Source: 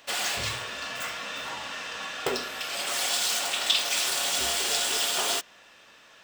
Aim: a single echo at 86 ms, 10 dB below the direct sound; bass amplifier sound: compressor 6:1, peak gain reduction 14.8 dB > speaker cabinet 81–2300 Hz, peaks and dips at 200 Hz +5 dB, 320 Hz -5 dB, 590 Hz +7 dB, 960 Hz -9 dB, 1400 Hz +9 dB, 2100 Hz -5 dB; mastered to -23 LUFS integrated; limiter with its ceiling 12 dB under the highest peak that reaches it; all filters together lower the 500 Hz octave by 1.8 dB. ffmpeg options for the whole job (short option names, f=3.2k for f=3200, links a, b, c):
-af "equalizer=f=500:t=o:g=-6,alimiter=limit=-21dB:level=0:latency=1,aecho=1:1:86:0.316,acompressor=threshold=-43dB:ratio=6,highpass=f=81:w=0.5412,highpass=f=81:w=1.3066,equalizer=f=200:t=q:w=4:g=5,equalizer=f=320:t=q:w=4:g=-5,equalizer=f=590:t=q:w=4:g=7,equalizer=f=960:t=q:w=4:g=-9,equalizer=f=1.4k:t=q:w=4:g=9,equalizer=f=2.1k:t=q:w=4:g=-5,lowpass=f=2.3k:w=0.5412,lowpass=f=2.3k:w=1.3066,volume=24dB"